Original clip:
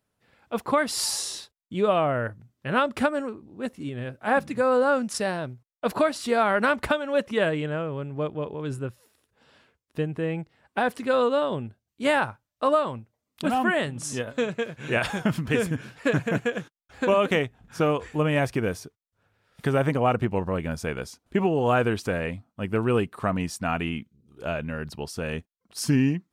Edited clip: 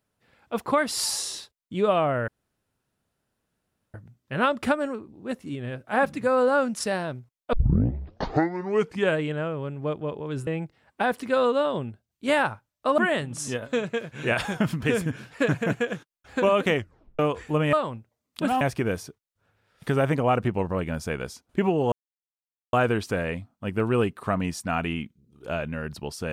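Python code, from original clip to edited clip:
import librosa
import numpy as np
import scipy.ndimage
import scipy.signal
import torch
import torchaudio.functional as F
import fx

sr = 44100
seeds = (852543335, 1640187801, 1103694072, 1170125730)

y = fx.edit(x, sr, fx.insert_room_tone(at_s=2.28, length_s=1.66),
    fx.tape_start(start_s=5.87, length_s=1.65),
    fx.cut(start_s=8.81, length_s=1.43),
    fx.move(start_s=12.75, length_s=0.88, to_s=18.38),
    fx.tape_stop(start_s=17.41, length_s=0.43),
    fx.insert_silence(at_s=21.69, length_s=0.81), tone=tone)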